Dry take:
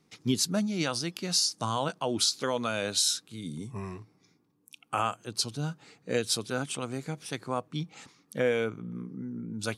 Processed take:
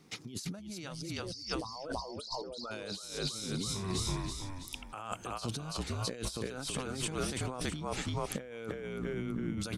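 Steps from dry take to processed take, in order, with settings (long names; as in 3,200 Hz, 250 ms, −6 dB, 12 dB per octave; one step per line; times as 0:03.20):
0:01.02–0:02.71: spectral envelope exaggerated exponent 3
echo with shifted repeats 328 ms, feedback 46%, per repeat −48 Hz, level −5.5 dB
compressor whose output falls as the input rises −39 dBFS, ratio −1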